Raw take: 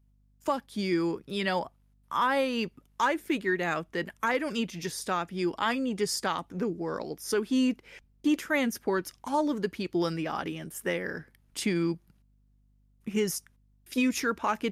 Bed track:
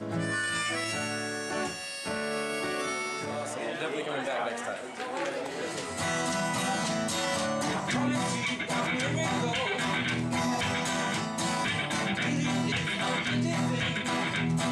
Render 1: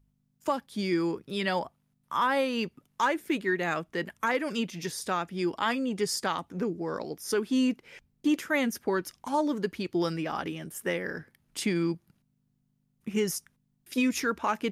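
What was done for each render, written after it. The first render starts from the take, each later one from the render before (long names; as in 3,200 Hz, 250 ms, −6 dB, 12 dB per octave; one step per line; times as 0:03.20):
hum removal 50 Hz, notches 2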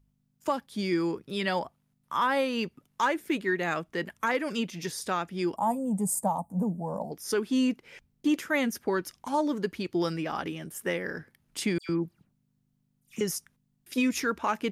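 0:05.56–0:07.12: drawn EQ curve 120 Hz 0 dB, 200 Hz +9 dB, 360 Hz −15 dB, 590 Hz +5 dB, 920 Hz +6 dB, 1,400 Hz −23 dB, 3,000 Hz −27 dB, 5,200 Hz −22 dB, 8,100 Hz +8 dB
0:11.78–0:13.21: all-pass dispersion lows, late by 110 ms, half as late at 2,500 Hz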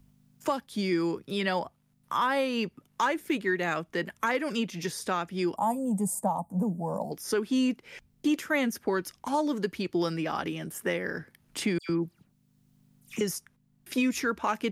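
multiband upward and downward compressor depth 40%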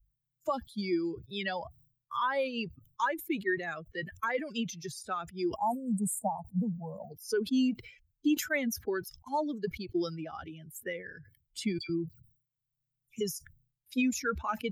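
spectral dynamics exaggerated over time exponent 2
level that may fall only so fast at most 120 dB per second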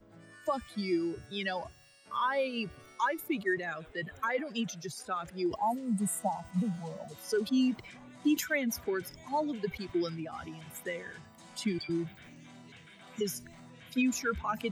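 mix in bed track −24 dB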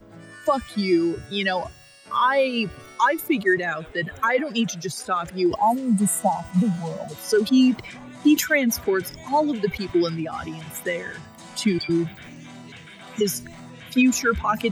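level +11 dB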